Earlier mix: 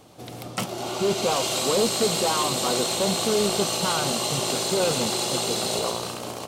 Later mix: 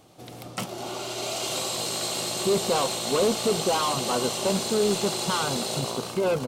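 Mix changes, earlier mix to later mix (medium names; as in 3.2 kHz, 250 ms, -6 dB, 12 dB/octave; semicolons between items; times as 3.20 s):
speech: entry +1.45 s; background -3.5 dB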